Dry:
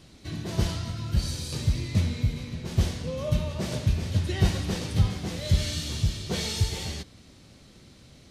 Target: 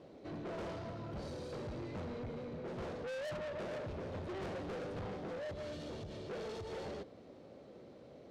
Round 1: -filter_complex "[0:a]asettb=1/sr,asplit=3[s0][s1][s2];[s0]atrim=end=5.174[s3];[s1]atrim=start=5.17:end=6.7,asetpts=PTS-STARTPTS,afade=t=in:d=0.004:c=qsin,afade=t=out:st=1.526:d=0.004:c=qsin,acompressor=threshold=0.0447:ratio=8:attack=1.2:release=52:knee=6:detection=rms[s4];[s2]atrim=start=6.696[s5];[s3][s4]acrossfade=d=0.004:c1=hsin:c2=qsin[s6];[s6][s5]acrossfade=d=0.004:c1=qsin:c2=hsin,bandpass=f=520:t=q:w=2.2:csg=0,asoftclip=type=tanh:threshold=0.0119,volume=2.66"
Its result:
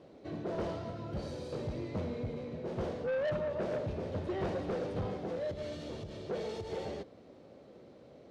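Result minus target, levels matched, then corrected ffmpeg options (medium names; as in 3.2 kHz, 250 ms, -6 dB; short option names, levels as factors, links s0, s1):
saturation: distortion -6 dB
-filter_complex "[0:a]asettb=1/sr,asplit=3[s0][s1][s2];[s0]atrim=end=5.174[s3];[s1]atrim=start=5.17:end=6.7,asetpts=PTS-STARTPTS,afade=t=in:d=0.004:c=qsin,afade=t=out:st=1.526:d=0.004:c=qsin,acompressor=threshold=0.0447:ratio=8:attack=1.2:release=52:knee=6:detection=rms[s4];[s2]atrim=start=6.696[s5];[s3][s4]acrossfade=d=0.004:c1=hsin:c2=qsin[s6];[s6][s5]acrossfade=d=0.004:c1=qsin:c2=hsin,bandpass=f=520:t=q:w=2.2:csg=0,asoftclip=type=tanh:threshold=0.00376,volume=2.66"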